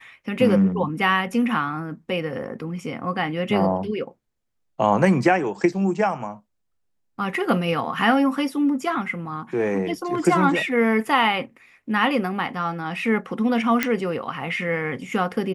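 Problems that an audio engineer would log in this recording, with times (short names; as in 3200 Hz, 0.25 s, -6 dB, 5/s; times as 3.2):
13.83 pop -5 dBFS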